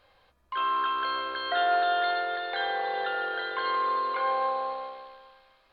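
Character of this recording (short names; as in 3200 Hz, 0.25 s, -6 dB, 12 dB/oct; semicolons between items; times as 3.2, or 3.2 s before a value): noise floor -65 dBFS; spectral tilt -1.0 dB/oct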